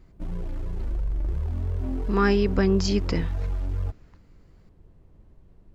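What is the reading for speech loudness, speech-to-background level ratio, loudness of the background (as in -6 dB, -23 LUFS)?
-24.0 LUFS, 7.5 dB, -31.5 LUFS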